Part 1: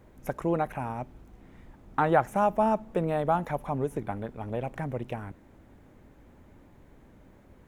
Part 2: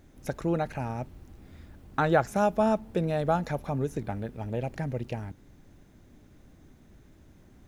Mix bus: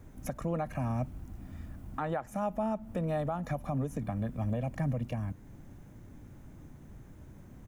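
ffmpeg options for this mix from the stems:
-filter_complex "[0:a]volume=0.596,asplit=2[s0][s1];[1:a]equalizer=f=125:t=o:w=1:g=5,equalizer=f=500:t=o:w=1:g=-7,equalizer=f=2000:t=o:w=1:g=-4,equalizer=f=4000:t=o:w=1:g=-9,acrossover=split=230[s2][s3];[s3]acompressor=threshold=0.0355:ratio=6[s4];[s2][s4]amix=inputs=2:normalize=0,adelay=1.5,volume=1.41[s5];[s1]apad=whole_len=338557[s6];[s5][s6]sidechaincompress=threshold=0.0224:ratio=8:attack=8.3:release=187[s7];[s0][s7]amix=inputs=2:normalize=0,alimiter=limit=0.0668:level=0:latency=1:release=424"

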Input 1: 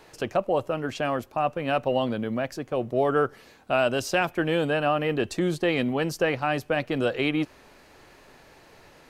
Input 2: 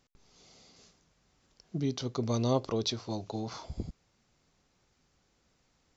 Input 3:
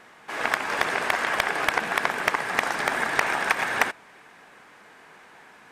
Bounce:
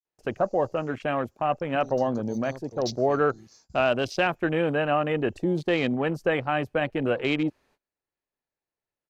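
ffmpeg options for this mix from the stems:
-filter_complex "[0:a]adelay=50,volume=1[s0];[1:a]aexciter=amount=14.4:drive=7.4:freq=4500,asoftclip=type=tanh:threshold=0.2,volume=0.237[s1];[s0][s1]amix=inputs=2:normalize=0,afwtdn=0.0158,agate=range=0.0562:threshold=0.00112:ratio=16:detection=peak"

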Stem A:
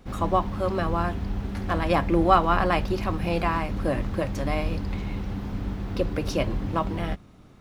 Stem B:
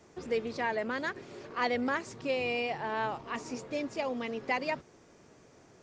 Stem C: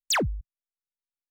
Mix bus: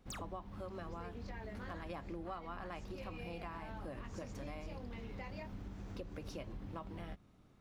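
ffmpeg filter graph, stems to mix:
-filter_complex "[0:a]volume=0.2,asplit=2[s0][s1];[1:a]flanger=delay=19.5:depth=6.3:speed=0.33,adelay=700,volume=1.26[s2];[2:a]volume=0.211[s3];[s1]apad=whole_len=287642[s4];[s2][s4]sidechaincompress=threshold=0.00891:ratio=8:attack=16:release=177[s5];[s5][s3]amix=inputs=2:normalize=0,acompressor=threshold=0.00447:ratio=3,volume=1[s6];[s0][s6]amix=inputs=2:normalize=0,acompressor=threshold=0.00794:ratio=6"

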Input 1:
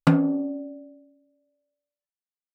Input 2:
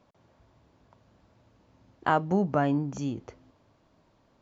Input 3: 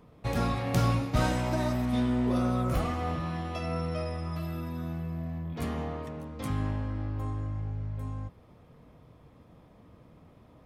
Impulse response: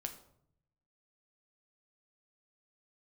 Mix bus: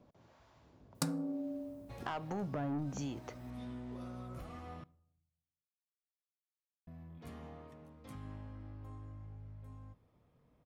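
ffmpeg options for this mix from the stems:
-filter_complex "[0:a]aexciter=amount=13.2:drive=4.2:freq=4300,adelay=950,volume=0.473,asplit=2[s0][s1];[s1]volume=0.133[s2];[1:a]alimiter=limit=0.112:level=0:latency=1,acrossover=split=620[s3][s4];[s3]aeval=exprs='val(0)*(1-0.7/2+0.7/2*cos(2*PI*1.1*n/s))':c=same[s5];[s4]aeval=exprs='val(0)*(1-0.7/2-0.7/2*cos(2*PI*1.1*n/s))':c=same[s6];[s5][s6]amix=inputs=2:normalize=0,asoftclip=type=tanh:threshold=0.0335,volume=1.26,asplit=3[s7][s8][s9];[s8]volume=0.119[s10];[2:a]alimiter=limit=0.075:level=0:latency=1:release=184,adelay=1650,volume=0.133,asplit=3[s11][s12][s13];[s11]atrim=end=4.84,asetpts=PTS-STARTPTS,afade=t=out:st=4.836:d=0.004:c=hsin[s14];[s12]atrim=start=4.84:end=6.87,asetpts=PTS-STARTPTS,volume=0[s15];[s13]atrim=start=6.87,asetpts=PTS-STARTPTS,afade=t=in:d=0.004:c=hsin[s16];[s14][s15][s16]concat=n=3:v=0:a=1,asplit=2[s17][s18];[s18]volume=0.316[s19];[s9]apad=whole_len=542540[s20];[s17][s20]sidechaincompress=threshold=0.00398:ratio=8:attack=16:release=390[s21];[s0][s7]amix=inputs=2:normalize=0,acompressor=threshold=0.0141:ratio=6,volume=1[s22];[3:a]atrim=start_sample=2205[s23];[s2][s10][s19]amix=inputs=3:normalize=0[s24];[s24][s23]afir=irnorm=-1:irlink=0[s25];[s21][s22][s25]amix=inputs=3:normalize=0"

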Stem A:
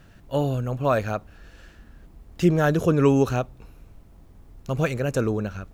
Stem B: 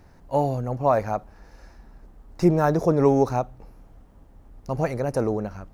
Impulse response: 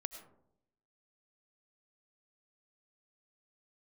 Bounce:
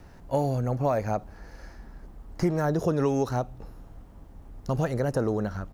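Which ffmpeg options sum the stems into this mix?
-filter_complex "[0:a]volume=0.398[s0];[1:a]adelay=0.8,volume=1.26[s1];[s0][s1]amix=inputs=2:normalize=0,acrossover=split=860|2000[s2][s3][s4];[s2]acompressor=threshold=0.0631:ratio=4[s5];[s3]acompressor=threshold=0.0112:ratio=4[s6];[s4]acompressor=threshold=0.00631:ratio=4[s7];[s5][s6][s7]amix=inputs=3:normalize=0"

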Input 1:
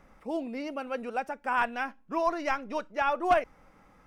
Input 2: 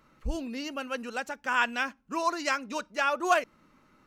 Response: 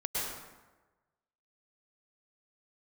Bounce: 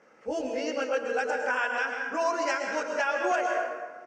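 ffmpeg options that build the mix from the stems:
-filter_complex "[0:a]volume=0.562,asplit=2[s0][s1];[s1]volume=0.562[s2];[1:a]adelay=19,volume=0.708,asplit=2[s3][s4];[s4]volume=0.596[s5];[2:a]atrim=start_sample=2205[s6];[s2][s5]amix=inputs=2:normalize=0[s7];[s7][s6]afir=irnorm=-1:irlink=0[s8];[s0][s3][s8]amix=inputs=3:normalize=0,highpass=300,equalizer=f=480:t=q:w=4:g=10,equalizer=f=1100:t=q:w=4:g=-5,equalizer=f=1600:t=q:w=4:g=5,equalizer=f=3900:t=q:w=4:g=-10,equalizer=f=5600:t=q:w=4:g=4,lowpass=f=7700:w=0.5412,lowpass=f=7700:w=1.3066,alimiter=limit=0.141:level=0:latency=1:release=475"

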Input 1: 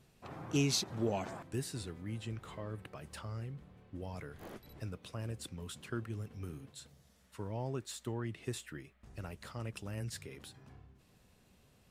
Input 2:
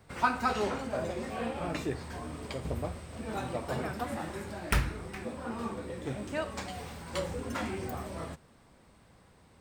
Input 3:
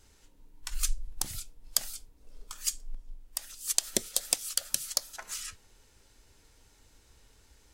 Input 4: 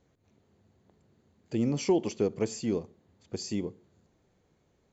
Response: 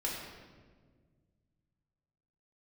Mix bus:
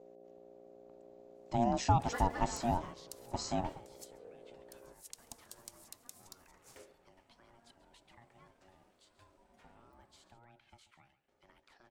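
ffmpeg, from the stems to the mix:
-filter_complex "[0:a]acrossover=split=300 6300:gain=0.224 1 0.251[s0][s1][s2];[s0][s1][s2]amix=inputs=3:normalize=0,acompressor=threshold=0.00501:ratio=2.5,equalizer=f=590:w=5.6:g=-11.5,adelay=2250,volume=0.316,asplit=2[s3][s4];[s4]volume=0.178[s5];[1:a]acrusher=bits=9:mode=log:mix=0:aa=0.000001,adynamicequalizer=threshold=0.00316:dfrequency=3600:dqfactor=0.7:tfrequency=3600:tqfactor=0.7:attack=5:release=100:ratio=0.375:range=2:mode=cutabove:tftype=highshelf,adelay=1900,volume=0.251,asplit=2[s6][s7];[s7]volume=0.168[s8];[2:a]equalizer=f=1600:w=0.43:g=-7,adelay=1350,volume=0.119,asplit=2[s9][s10];[s10]volume=0.0631[s11];[3:a]dynaudnorm=f=110:g=17:m=1.5,aeval=exprs='val(0)+0.00355*(sin(2*PI*60*n/s)+sin(2*PI*2*60*n/s)/2+sin(2*PI*3*60*n/s)/3+sin(2*PI*4*60*n/s)/4+sin(2*PI*5*60*n/s)/5)':c=same,volume=0.668,asplit=2[s12][s13];[s13]apad=whole_len=507584[s14];[s6][s14]sidechaingate=range=0.0224:threshold=0.00631:ratio=16:detection=peak[s15];[s5][s8][s11]amix=inputs=3:normalize=0,aecho=0:1:137:1[s16];[s3][s15][s9][s12][s16]amix=inputs=5:normalize=0,aeval=exprs='val(0)*sin(2*PI*470*n/s)':c=same"

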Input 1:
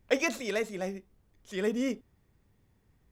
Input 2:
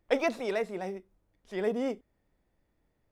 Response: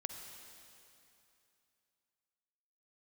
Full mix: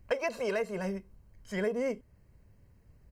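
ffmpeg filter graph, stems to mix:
-filter_complex "[0:a]lowshelf=f=180:g=11.5,volume=0.841[s0];[1:a]highpass=48,aecho=1:1:1.9:0.59,volume=1.26,asplit=2[s1][s2];[s2]apad=whole_len=137430[s3];[s0][s3]sidechaincompress=threshold=0.0316:ratio=8:attack=16:release=576[s4];[s4][s1]amix=inputs=2:normalize=0,asuperstop=centerf=3500:order=20:qfactor=6.9,acompressor=threshold=0.0447:ratio=6"

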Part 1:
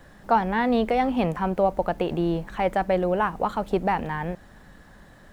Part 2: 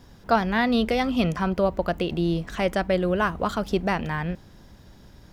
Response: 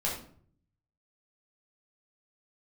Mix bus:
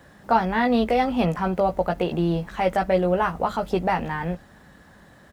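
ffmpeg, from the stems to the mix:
-filter_complex "[0:a]highpass=64,volume=1.06,asplit=2[s0][s1];[1:a]aecho=1:1:1.5:0.65,adelay=16,volume=0.422[s2];[s1]apad=whole_len=235615[s3];[s2][s3]sidechaingate=range=0.0224:threshold=0.0126:ratio=16:detection=peak[s4];[s0][s4]amix=inputs=2:normalize=0"

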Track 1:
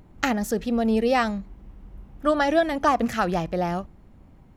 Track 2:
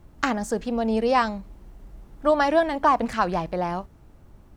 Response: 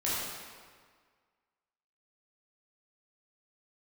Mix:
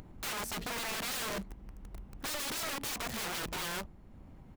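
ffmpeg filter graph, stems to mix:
-filter_complex "[0:a]acompressor=mode=upward:threshold=0.00891:ratio=2.5,volume=0.596[s0];[1:a]acrusher=bits=5:mix=0:aa=0.000001,adelay=0.5,volume=0.299[s1];[s0][s1]amix=inputs=2:normalize=0,aeval=exprs='(mod(25.1*val(0)+1,2)-1)/25.1':c=same,alimiter=level_in=2.51:limit=0.0631:level=0:latency=1:release=34,volume=0.398"

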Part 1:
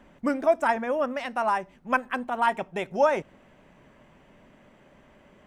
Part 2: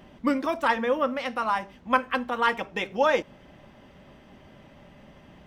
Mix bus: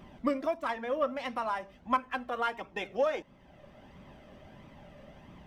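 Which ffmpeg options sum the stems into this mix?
-filter_complex "[0:a]adynamicsmooth=sensitivity=5.5:basefreq=2300,volume=0.178,asplit=2[s0][s1];[1:a]equalizer=f=350:w=0.41:g=3.5,flanger=delay=0.8:depth=1:regen=41:speed=1.5:shape=triangular,aeval=exprs='0.398*(cos(1*acos(clip(val(0)/0.398,-1,1)))-cos(1*PI/2))+0.00562*(cos(7*acos(clip(val(0)/0.398,-1,1)))-cos(7*PI/2))':c=same,volume=1.19[s2];[s1]apad=whole_len=240914[s3];[s2][s3]sidechaincompress=threshold=0.00794:ratio=8:attack=39:release=1010[s4];[s0][s4]amix=inputs=2:normalize=0"

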